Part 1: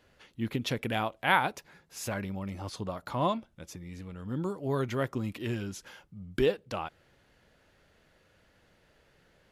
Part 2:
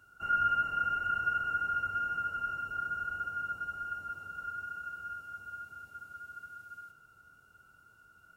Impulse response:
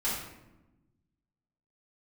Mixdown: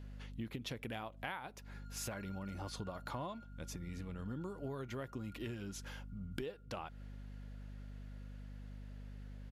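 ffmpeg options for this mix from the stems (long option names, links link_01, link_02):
-filter_complex "[0:a]aeval=exprs='val(0)+0.00501*(sin(2*PI*50*n/s)+sin(2*PI*2*50*n/s)/2+sin(2*PI*3*50*n/s)/3+sin(2*PI*4*50*n/s)/4+sin(2*PI*5*50*n/s)/5)':channel_layout=same,volume=-1.5dB,asplit=2[link_01][link_02];[1:a]asoftclip=type=hard:threshold=-31.5dB,adelay=1400,volume=-18.5dB,asplit=2[link_03][link_04];[link_04]volume=-20dB[link_05];[link_02]apad=whole_len=430722[link_06];[link_03][link_06]sidechaingate=range=-33dB:threshold=-39dB:ratio=16:detection=peak[link_07];[2:a]atrim=start_sample=2205[link_08];[link_05][link_08]afir=irnorm=-1:irlink=0[link_09];[link_01][link_07][link_09]amix=inputs=3:normalize=0,acompressor=threshold=-39dB:ratio=20"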